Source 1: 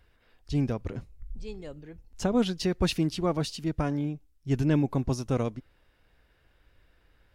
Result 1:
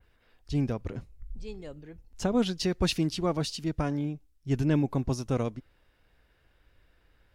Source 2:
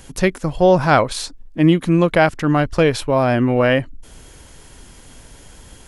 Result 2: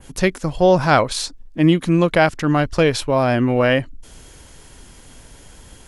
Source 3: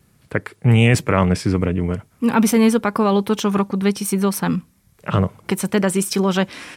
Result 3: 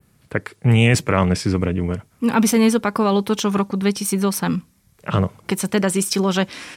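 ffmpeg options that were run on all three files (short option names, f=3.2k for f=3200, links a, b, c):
-af "adynamicequalizer=threshold=0.0112:dfrequency=5500:dqfactor=0.72:tfrequency=5500:tqfactor=0.72:attack=5:release=100:ratio=0.375:range=2:mode=boostabove:tftype=bell,volume=-1dB"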